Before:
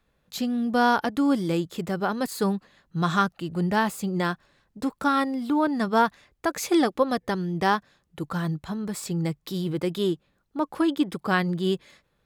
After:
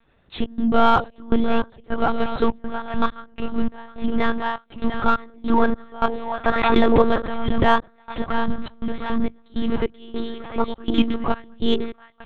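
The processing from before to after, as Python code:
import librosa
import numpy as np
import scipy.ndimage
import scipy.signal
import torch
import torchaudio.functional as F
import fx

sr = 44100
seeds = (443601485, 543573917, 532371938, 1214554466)

p1 = x + fx.echo_split(x, sr, split_hz=580.0, low_ms=102, high_ms=695, feedback_pct=52, wet_db=-8.5, dry=0)
p2 = fx.vibrato(p1, sr, rate_hz=0.78, depth_cents=87.0)
p3 = fx.step_gate(p2, sr, bpm=102, pattern='xxx.xxx..xx..x', floor_db=-24.0, edge_ms=4.5)
p4 = fx.lpc_monotone(p3, sr, seeds[0], pitch_hz=230.0, order=10)
p5 = 10.0 ** (-25.0 / 20.0) * np.tanh(p4 / 10.0 ** (-25.0 / 20.0))
p6 = p4 + F.gain(torch.from_numpy(p5), -7.0).numpy()
p7 = fx.pre_swell(p6, sr, db_per_s=36.0, at=(6.49, 7.63), fade=0.02)
y = F.gain(torch.from_numpy(p7), 5.0).numpy()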